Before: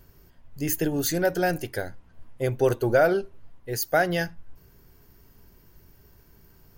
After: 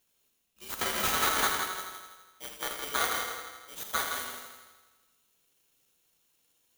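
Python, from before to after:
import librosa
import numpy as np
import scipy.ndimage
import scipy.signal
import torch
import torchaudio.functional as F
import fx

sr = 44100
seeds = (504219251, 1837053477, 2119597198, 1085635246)

y = fx.bit_reversed(x, sr, seeds[0], block=32)
y = scipy.signal.sosfilt(scipy.signal.butter(2, 1100.0, 'highpass', fs=sr, output='sos'), y)
y = np.diff(y, prepend=0.0)
y = fx.leveller(y, sr, passes=3, at=(0.79, 1.47))
y = fx.clip_asym(y, sr, top_db=-17.5, bottom_db=-9.5)
y = scipy.signal.lfilter(np.full(13, 1.0 / 13), 1.0, y)
y = fx.echo_heads(y, sr, ms=82, heads='first and second', feedback_pct=48, wet_db=-8.5)
y = fx.rev_schroeder(y, sr, rt60_s=0.91, comb_ms=29, drr_db=5.5)
y = y * np.sign(np.sin(2.0 * np.pi * 1300.0 * np.arange(len(y)) / sr))
y = F.gain(torch.from_numpy(y), 7.0).numpy()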